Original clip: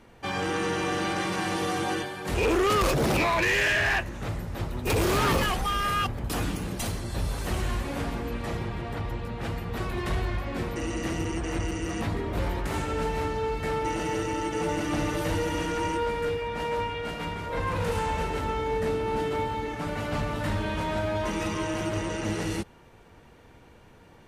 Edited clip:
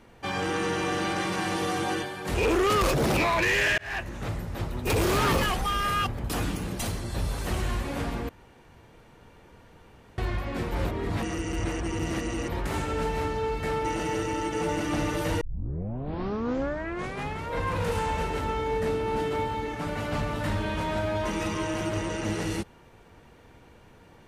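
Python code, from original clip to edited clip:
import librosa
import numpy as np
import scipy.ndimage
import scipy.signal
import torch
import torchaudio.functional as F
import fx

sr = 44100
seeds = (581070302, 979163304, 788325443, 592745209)

y = fx.edit(x, sr, fx.fade_in_span(start_s=3.78, length_s=0.35),
    fx.room_tone_fill(start_s=8.29, length_s=1.89),
    fx.reverse_span(start_s=10.72, length_s=1.8),
    fx.tape_start(start_s=15.41, length_s=2.08), tone=tone)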